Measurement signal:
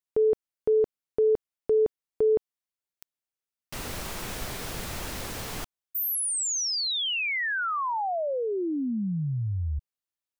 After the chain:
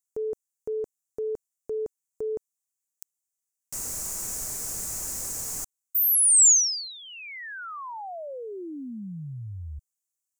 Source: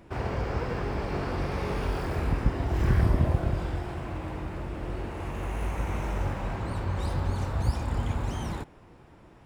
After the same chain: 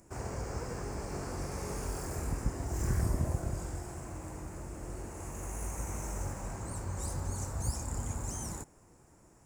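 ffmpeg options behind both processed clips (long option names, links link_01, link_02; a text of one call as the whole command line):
ffmpeg -i in.wav -af "highshelf=frequency=5000:width_type=q:width=3:gain=13.5,volume=-8dB" out.wav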